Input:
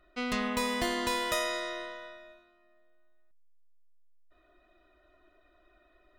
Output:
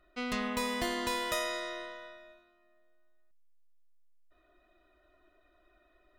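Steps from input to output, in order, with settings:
parametric band 13,000 Hz +2.5 dB 0.2 octaves
level −2.5 dB

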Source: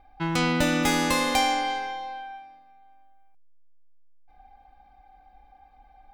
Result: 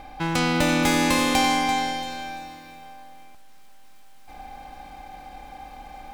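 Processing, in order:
compressor on every frequency bin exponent 0.6
feedback echo at a low word length 339 ms, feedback 35%, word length 8 bits, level −10 dB

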